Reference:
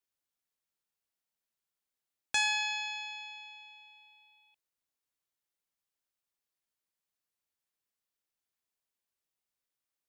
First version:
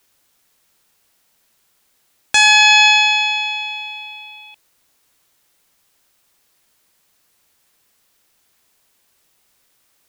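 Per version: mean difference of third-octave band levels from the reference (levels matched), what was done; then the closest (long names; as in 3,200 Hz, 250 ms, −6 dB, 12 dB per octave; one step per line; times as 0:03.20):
1.5 dB: boost into a limiter +28.5 dB
level −1 dB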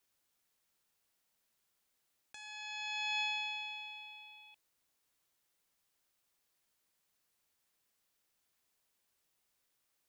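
5.0 dB: compressor whose output falls as the input rises −44 dBFS, ratio −1
level +2.5 dB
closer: first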